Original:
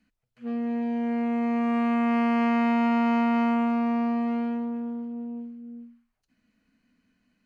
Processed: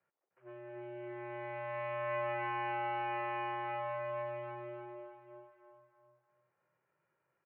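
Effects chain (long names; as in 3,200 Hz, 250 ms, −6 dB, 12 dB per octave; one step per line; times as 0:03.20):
mu-law and A-law mismatch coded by mu
single-sideband voice off tune −110 Hz 490–3,100 Hz
low-pass that shuts in the quiet parts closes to 1,100 Hz, open at −26.5 dBFS
repeating echo 305 ms, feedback 38%, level −3 dB
level −9 dB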